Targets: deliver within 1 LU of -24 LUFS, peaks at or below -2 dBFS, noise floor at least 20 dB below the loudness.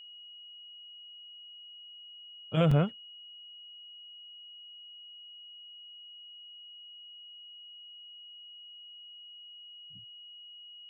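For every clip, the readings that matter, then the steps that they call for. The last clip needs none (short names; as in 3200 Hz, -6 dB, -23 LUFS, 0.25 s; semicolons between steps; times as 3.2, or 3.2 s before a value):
dropouts 1; longest dropout 4.5 ms; steady tone 2900 Hz; tone level -47 dBFS; loudness -39.0 LUFS; peak -15.5 dBFS; loudness target -24.0 LUFS
-> interpolate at 2.71, 4.5 ms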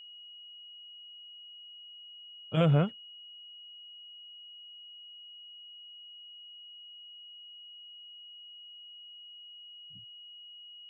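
dropouts 0; steady tone 2900 Hz; tone level -47 dBFS
-> notch 2900 Hz, Q 30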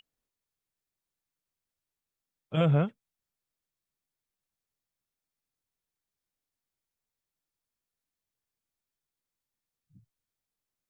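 steady tone none; loudness -28.0 LUFS; peak -15.0 dBFS; loudness target -24.0 LUFS
-> gain +4 dB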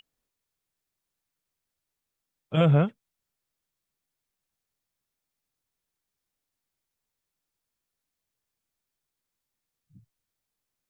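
loudness -24.0 LUFS; peak -11.0 dBFS; noise floor -86 dBFS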